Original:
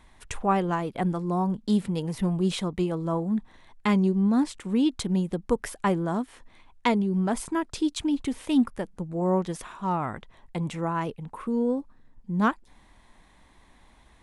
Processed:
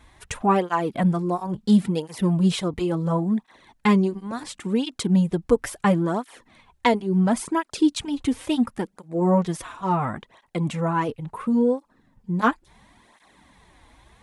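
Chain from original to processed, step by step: cancelling through-zero flanger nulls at 0.72 Hz, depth 5.5 ms; trim +7 dB

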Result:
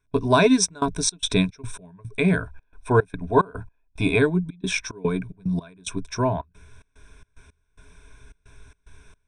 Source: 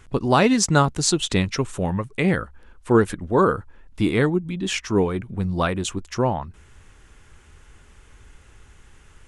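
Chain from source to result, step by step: rippled EQ curve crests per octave 1.6, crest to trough 16 dB; trance gate ".xxxx.xx.xx.x." 110 bpm -24 dB; 2.35–4.18 s: small resonant body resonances 770/2500 Hz, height 9 dB -> 13 dB, ringing for 25 ms; trim -3.5 dB

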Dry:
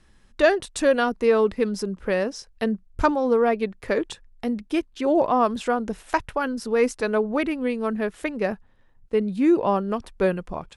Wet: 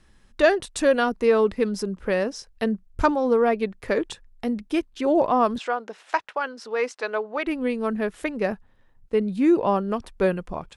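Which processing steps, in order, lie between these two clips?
5.58–7.47 s: band-pass 560–5300 Hz

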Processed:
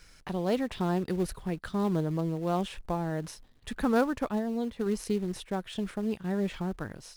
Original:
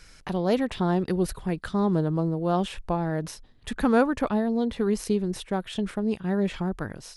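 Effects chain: in parallel at -10.5 dB: companded quantiser 4-bit; 4.18–4.86 s: on the sum: upward expansion 1.5:1, over -32 dBFS; trim -7 dB

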